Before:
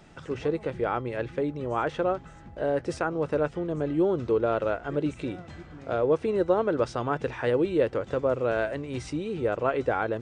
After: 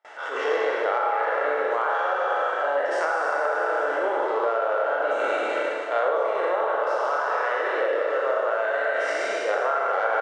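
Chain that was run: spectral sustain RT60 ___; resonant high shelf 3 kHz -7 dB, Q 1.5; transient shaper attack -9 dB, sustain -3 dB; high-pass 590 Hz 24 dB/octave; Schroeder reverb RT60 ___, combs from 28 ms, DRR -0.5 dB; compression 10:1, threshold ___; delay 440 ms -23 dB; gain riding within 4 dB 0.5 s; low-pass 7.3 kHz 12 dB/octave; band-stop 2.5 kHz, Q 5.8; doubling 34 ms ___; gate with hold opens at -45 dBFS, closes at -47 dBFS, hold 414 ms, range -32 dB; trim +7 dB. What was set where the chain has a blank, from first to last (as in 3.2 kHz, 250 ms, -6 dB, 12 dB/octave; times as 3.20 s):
2.44 s, 2.1 s, -27 dBFS, -13 dB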